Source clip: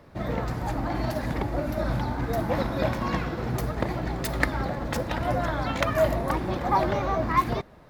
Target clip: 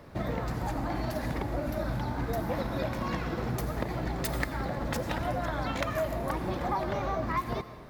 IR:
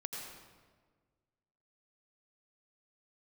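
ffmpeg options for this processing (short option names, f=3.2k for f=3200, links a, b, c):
-filter_complex "[0:a]acompressor=threshold=-31dB:ratio=4,asplit=2[a][b];[1:a]atrim=start_sample=2205,highshelf=f=5.5k:g=10.5[c];[b][c]afir=irnorm=-1:irlink=0,volume=-9dB[d];[a][d]amix=inputs=2:normalize=0"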